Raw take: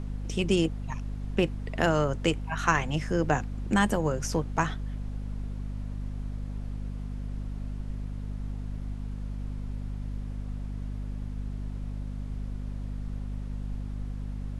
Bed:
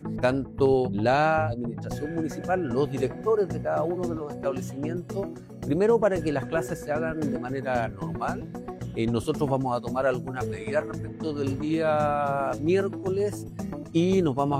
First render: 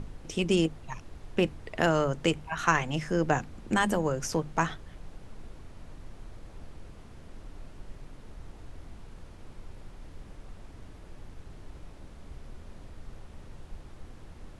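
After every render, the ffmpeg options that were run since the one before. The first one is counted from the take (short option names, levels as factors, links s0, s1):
-af "bandreject=f=50:t=h:w=6,bandreject=f=100:t=h:w=6,bandreject=f=150:t=h:w=6,bandreject=f=200:t=h:w=6,bandreject=f=250:t=h:w=6"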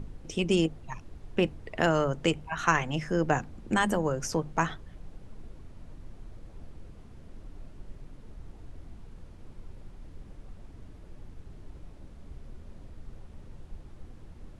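-af "afftdn=nr=6:nf=-49"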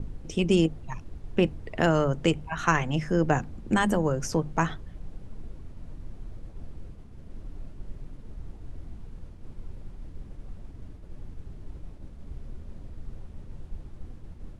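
-af "lowshelf=f=370:g=5.5,agate=range=0.0224:threshold=0.0126:ratio=3:detection=peak"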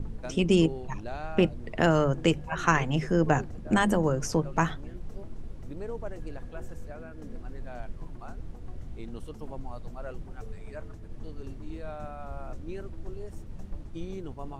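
-filter_complex "[1:a]volume=0.141[s0];[0:a][s0]amix=inputs=2:normalize=0"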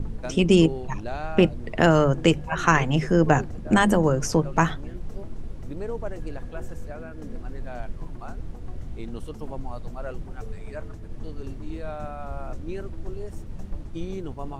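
-af "volume=1.78,alimiter=limit=0.794:level=0:latency=1"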